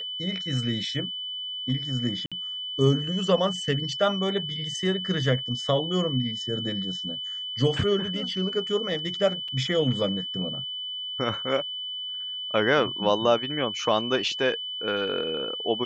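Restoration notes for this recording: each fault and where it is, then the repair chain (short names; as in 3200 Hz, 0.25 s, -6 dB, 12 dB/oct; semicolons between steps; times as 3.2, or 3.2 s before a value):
tone 3000 Hz -31 dBFS
2.26–2.32 gap 56 ms
9.48 gap 4.7 ms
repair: notch 3000 Hz, Q 30; interpolate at 2.26, 56 ms; interpolate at 9.48, 4.7 ms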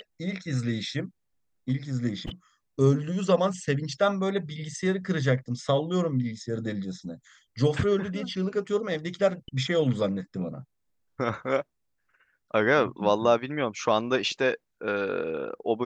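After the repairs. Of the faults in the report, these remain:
none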